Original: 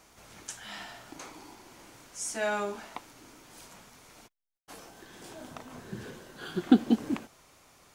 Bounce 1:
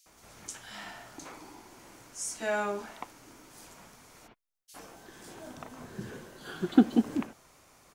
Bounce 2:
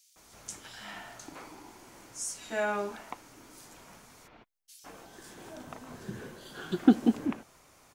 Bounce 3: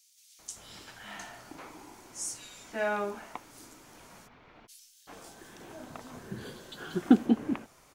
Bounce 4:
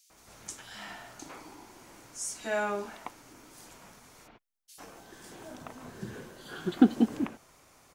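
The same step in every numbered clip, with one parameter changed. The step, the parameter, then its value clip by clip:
bands offset in time, time: 60 ms, 160 ms, 390 ms, 100 ms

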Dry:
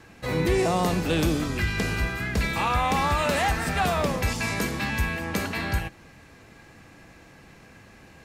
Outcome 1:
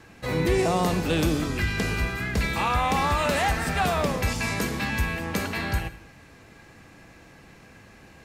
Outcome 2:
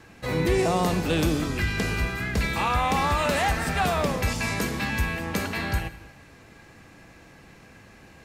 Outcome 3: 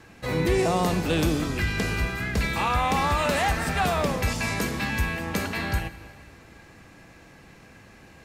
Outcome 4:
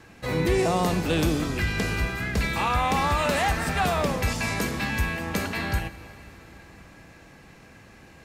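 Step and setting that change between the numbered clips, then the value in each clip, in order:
plate-style reverb, RT60: 0.54 s, 1.1 s, 2.5 s, 5.2 s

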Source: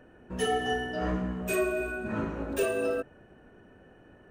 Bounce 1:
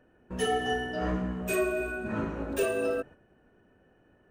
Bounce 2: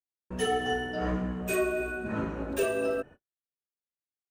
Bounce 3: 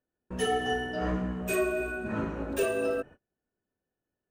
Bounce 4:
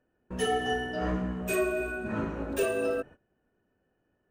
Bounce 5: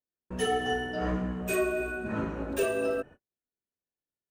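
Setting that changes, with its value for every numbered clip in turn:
gate, range: -8 dB, -59 dB, -33 dB, -20 dB, -47 dB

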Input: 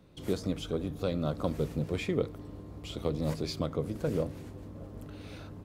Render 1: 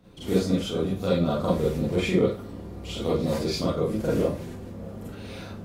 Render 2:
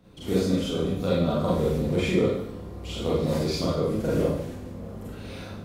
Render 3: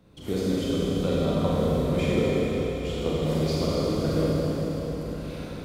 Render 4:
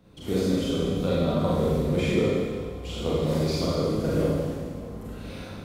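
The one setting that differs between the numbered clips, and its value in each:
Schroeder reverb, RT60: 0.31 s, 0.7 s, 4.5 s, 1.7 s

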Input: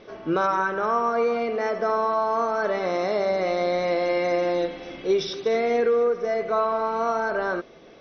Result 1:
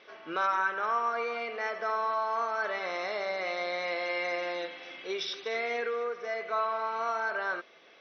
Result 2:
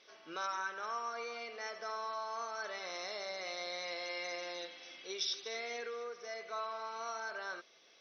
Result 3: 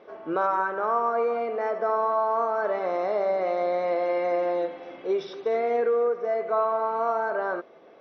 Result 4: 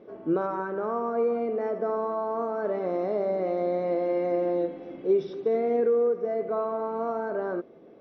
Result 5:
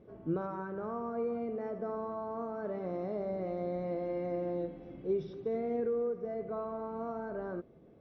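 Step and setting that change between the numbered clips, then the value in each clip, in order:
band-pass filter, frequency: 2.4 kHz, 7.1 kHz, 780 Hz, 300 Hz, 100 Hz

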